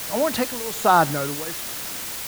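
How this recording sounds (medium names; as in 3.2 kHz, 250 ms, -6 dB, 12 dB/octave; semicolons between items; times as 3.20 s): tremolo triangle 1.2 Hz, depth 90%; a quantiser's noise floor 6-bit, dither triangular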